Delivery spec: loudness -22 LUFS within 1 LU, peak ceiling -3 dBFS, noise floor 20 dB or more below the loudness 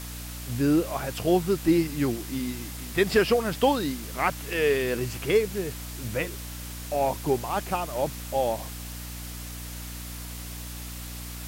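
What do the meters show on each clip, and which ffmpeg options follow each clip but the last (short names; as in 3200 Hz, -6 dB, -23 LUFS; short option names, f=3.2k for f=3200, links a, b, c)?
hum 60 Hz; harmonics up to 300 Hz; hum level -36 dBFS; noise floor -38 dBFS; noise floor target -48 dBFS; loudness -28.0 LUFS; peak -10.0 dBFS; loudness target -22.0 LUFS
-> -af "bandreject=f=60:t=h:w=6,bandreject=f=120:t=h:w=6,bandreject=f=180:t=h:w=6,bandreject=f=240:t=h:w=6,bandreject=f=300:t=h:w=6"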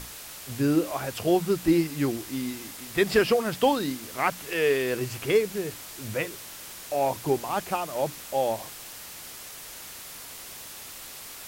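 hum none; noise floor -42 dBFS; noise floor target -47 dBFS
-> -af "afftdn=nr=6:nf=-42"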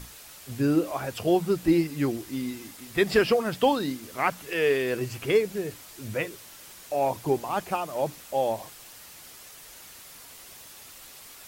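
noise floor -47 dBFS; loudness -27.0 LUFS; peak -9.5 dBFS; loudness target -22.0 LUFS
-> -af "volume=5dB"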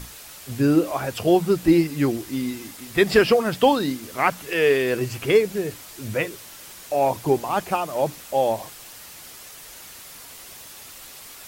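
loudness -22.0 LUFS; peak -4.5 dBFS; noise floor -42 dBFS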